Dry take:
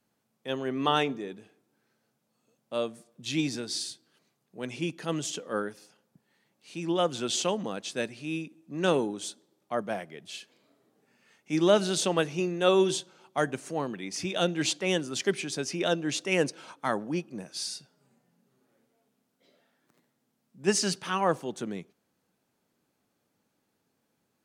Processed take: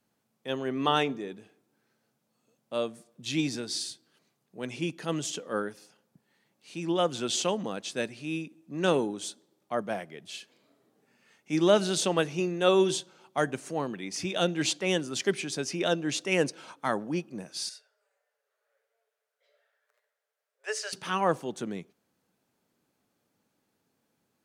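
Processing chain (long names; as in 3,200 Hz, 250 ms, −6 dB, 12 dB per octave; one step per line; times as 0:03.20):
0:17.69–0:20.93: Chebyshev high-pass with heavy ripple 420 Hz, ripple 9 dB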